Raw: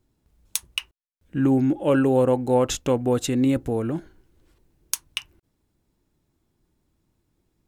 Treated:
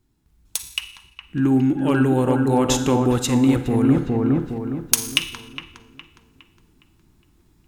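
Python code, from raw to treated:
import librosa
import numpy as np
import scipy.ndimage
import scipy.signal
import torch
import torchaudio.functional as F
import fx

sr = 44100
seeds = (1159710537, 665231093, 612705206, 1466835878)

y = fx.peak_eq(x, sr, hz=550.0, db=-11.0, octaves=0.61)
y = fx.echo_wet_lowpass(y, sr, ms=412, feedback_pct=38, hz=1600.0, wet_db=-4.5)
y = fx.rev_schroeder(y, sr, rt60_s=0.83, comb_ms=38, drr_db=11.0)
y = np.clip(10.0 ** (12.5 / 20.0) * y, -1.0, 1.0) / 10.0 ** (12.5 / 20.0)
y = fx.rider(y, sr, range_db=5, speed_s=0.5)
y = y * librosa.db_to_amplitude(6.0)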